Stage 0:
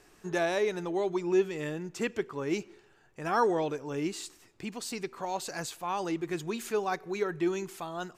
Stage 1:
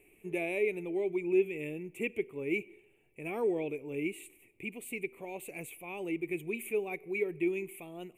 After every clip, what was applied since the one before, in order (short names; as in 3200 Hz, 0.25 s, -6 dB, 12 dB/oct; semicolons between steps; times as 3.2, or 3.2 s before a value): EQ curve 180 Hz 0 dB, 410 Hz +5 dB, 1600 Hz -20 dB, 2300 Hz +15 dB, 5000 Hz -30 dB, 9700 Hz +8 dB; gain -6 dB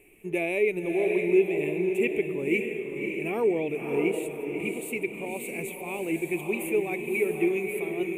diffused feedback echo 0.581 s, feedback 42%, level -4 dB; gain +6 dB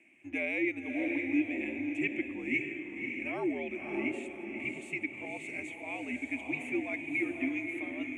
speaker cabinet 490–6300 Hz, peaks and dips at 540 Hz -9 dB, 1100 Hz -4 dB, 4000 Hz -6 dB; frequency shift -80 Hz; gain -1.5 dB